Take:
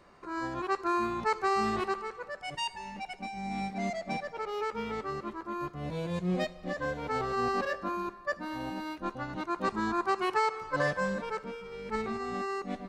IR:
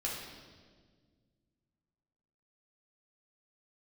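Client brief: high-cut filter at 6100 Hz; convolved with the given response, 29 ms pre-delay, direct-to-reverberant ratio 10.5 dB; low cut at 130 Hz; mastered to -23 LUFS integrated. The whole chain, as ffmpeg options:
-filter_complex "[0:a]highpass=130,lowpass=6.1k,asplit=2[a][b];[1:a]atrim=start_sample=2205,adelay=29[c];[b][c]afir=irnorm=-1:irlink=0,volume=-14dB[d];[a][d]amix=inputs=2:normalize=0,volume=10dB"

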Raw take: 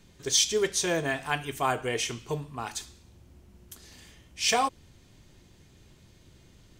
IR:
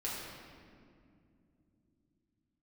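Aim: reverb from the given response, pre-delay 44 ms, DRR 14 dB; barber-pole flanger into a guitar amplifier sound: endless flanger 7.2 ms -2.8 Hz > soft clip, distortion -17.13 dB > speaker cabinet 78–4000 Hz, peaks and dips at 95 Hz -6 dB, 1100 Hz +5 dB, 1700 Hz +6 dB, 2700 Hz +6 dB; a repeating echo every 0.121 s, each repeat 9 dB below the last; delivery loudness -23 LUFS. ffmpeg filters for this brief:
-filter_complex "[0:a]aecho=1:1:121|242|363|484:0.355|0.124|0.0435|0.0152,asplit=2[a][b];[1:a]atrim=start_sample=2205,adelay=44[c];[b][c]afir=irnorm=-1:irlink=0,volume=-17dB[d];[a][d]amix=inputs=2:normalize=0,asplit=2[e][f];[f]adelay=7.2,afreqshift=-2.8[g];[e][g]amix=inputs=2:normalize=1,asoftclip=threshold=-21dB,highpass=78,equalizer=f=95:t=q:w=4:g=-6,equalizer=f=1.1k:t=q:w=4:g=5,equalizer=f=1.7k:t=q:w=4:g=6,equalizer=f=2.7k:t=q:w=4:g=6,lowpass=f=4k:w=0.5412,lowpass=f=4k:w=1.3066,volume=8.5dB"

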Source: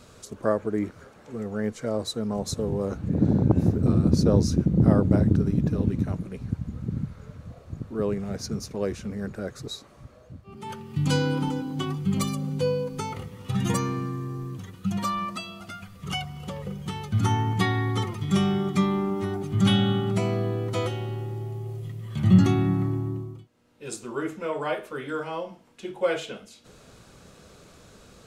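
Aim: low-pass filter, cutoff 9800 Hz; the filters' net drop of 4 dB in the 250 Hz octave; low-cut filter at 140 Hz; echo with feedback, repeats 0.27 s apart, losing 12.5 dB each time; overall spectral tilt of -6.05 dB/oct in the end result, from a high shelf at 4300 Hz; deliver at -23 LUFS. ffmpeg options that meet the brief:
-af "highpass=140,lowpass=9.8k,equalizer=f=250:t=o:g=-4.5,highshelf=f=4.3k:g=-5,aecho=1:1:270|540|810:0.237|0.0569|0.0137,volume=6.5dB"

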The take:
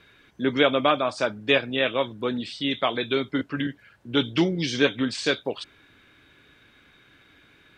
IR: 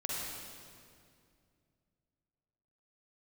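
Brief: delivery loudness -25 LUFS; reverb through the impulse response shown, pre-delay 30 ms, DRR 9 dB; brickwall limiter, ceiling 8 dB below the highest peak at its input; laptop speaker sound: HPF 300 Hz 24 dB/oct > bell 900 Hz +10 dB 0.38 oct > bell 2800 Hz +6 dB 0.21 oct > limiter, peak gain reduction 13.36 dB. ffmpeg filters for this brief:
-filter_complex "[0:a]alimiter=limit=-14.5dB:level=0:latency=1,asplit=2[a][b];[1:a]atrim=start_sample=2205,adelay=30[c];[b][c]afir=irnorm=-1:irlink=0,volume=-13dB[d];[a][d]amix=inputs=2:normalize=0,highpass=f=300:w=0.5412,highpass=f=300:w=1.3066,equalizer=f=900:t=o:w=0.38:g=10,equalizer=f=2.8k:t=o:w=0.21:g=6,volume=8.5dB,alimiter=limit=-15.5dB:level=0:latency=1"

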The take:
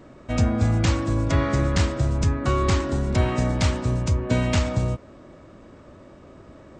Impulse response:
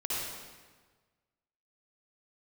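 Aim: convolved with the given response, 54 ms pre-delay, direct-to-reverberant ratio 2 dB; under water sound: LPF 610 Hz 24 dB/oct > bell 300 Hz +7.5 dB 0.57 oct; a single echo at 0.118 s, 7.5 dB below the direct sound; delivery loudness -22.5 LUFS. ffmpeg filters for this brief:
-filter_complex "[0:a]aecho=1:1:118:0.422,asplit=2[a][b];[1:a]atrim=start_sample=2205,adelay=54[c];[b][c]afir=irnorm=-1:irlink=0,volume=-8dB[d];[a][d]amix=inputs=2:normalize=0,lowpass=f=610:w=0.5412,lowpass=f=610:w=1.3066,equalizer=f=300:t=o:w=0.57:g=7.5,volume=-3.5dB"

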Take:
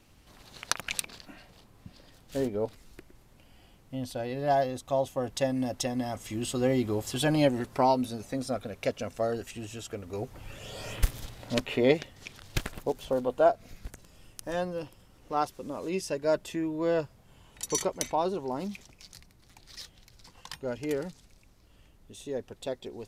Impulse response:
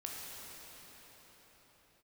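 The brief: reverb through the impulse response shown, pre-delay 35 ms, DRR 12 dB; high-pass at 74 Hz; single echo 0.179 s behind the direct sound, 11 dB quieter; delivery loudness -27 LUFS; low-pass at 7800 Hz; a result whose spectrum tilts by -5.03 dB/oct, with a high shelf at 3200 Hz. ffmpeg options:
-filter_complex "[0:a]highpass=74,lowpass=7.8k,highshelf=f=3.2k:g=-3.5,aecho=1:1:179:0.282,asplit=2[a][b];[1:a]atrim=start_sample=2205,adelay=35[c];[b][c]afir=irnorm=-1:irlink=0,volume=-12.5dB[d];[a][d]amix=inputs=2:normalize=0,volume=4dB"

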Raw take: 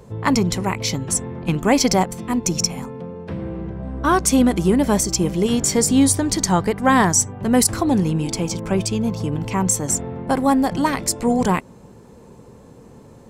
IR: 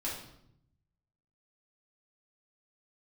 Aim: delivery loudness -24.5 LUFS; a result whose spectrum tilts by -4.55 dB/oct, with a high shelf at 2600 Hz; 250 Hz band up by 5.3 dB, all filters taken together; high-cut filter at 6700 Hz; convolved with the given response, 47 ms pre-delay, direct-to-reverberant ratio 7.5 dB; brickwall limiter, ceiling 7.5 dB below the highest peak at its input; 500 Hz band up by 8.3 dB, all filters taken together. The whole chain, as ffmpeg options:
-filter_complex "[0:a]lowpass=6.7k,equalizer=f=250:t=o:g=4,equalizer=f=500:t=o:g=8.5,highshelf=f=2.6k:g=6.5,alimiter=limit=-4dB:level=0:latency=1,asplit=2[a][b];[1:a]atrim=start_sample=2205,adelay=47[c];[b][c]afir=irnorm=-1:irlink=0,volume=-10.5dB[d];[a][d]amix=inputs=2:normalize=0,volume=-9.5dB"

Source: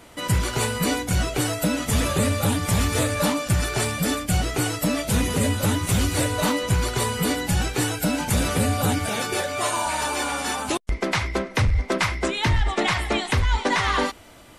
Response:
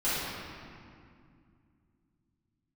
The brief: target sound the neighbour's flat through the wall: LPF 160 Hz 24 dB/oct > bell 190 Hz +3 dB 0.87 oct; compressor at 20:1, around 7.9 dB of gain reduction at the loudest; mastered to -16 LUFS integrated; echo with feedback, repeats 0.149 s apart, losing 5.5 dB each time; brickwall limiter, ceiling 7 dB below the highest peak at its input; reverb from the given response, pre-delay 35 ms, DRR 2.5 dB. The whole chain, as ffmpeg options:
-filter_complex "[0:a]acompressor=threshold=-24dB:ratio=20,alimiter=limit=-20.5dB:level=0:latency=1,aecho=1:1:149|298|447|596|745|894|1043:0.531|0.281|0.149|0.079|0.0419|0.0222|0.0118,asplit=2[a][b];[1:a]atrim=start_sample=2205,adelay=35[c];[b][c]afir=irnorm=-1:irlink=0,volume=-13.5dB[d];[a][d]amix=inputs=2:normalize=0,lowpass=f=160:w=0.5412,lowpass=f=160:w=1.3066,equalizer=f=190:t=o:w=0.87:g=3,volume=15dB"

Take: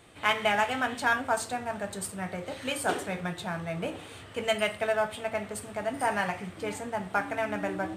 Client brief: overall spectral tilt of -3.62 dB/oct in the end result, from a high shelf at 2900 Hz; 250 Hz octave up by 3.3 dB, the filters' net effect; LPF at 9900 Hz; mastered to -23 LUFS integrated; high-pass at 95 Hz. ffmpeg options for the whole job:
-af "highpass=95,lowpass=9.9k,equalizer=f=250:t=o:g=4.5,highshelf=f=2.9k:g=-7,volume=8dB"

